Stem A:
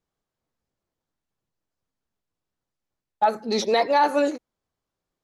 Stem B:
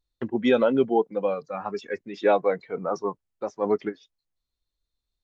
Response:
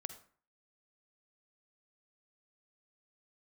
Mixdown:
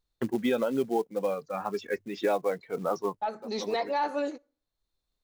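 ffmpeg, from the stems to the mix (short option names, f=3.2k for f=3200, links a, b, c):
-filter_complex "[0:a]acontrast=65,lowpass=6.7k,volume=-16dB,asplit=3[a][b][c];[b]volume=-16.5dB[d];[1:a]acrusher=bits=6:mode=log:mix=0:aa=0.000001,volume=0.5dB[e];[c]apad=whole_len=230886[f];[e][f]sidechaincompress=threshold=-44dB:ratio=8:attack=8.6:release=542[g];[2:a]atrim=start_sample=2205[h];[d][h]afir=irnorm=-1:irlink=0[i];[a][g][i]amix=inputs=3:normalize=0,bandreject=f=50:t=h:w=6,bandreject=f=100:t=h:w=6,alimiter=limit=-17.5dB:level=0:latency=1:release=488"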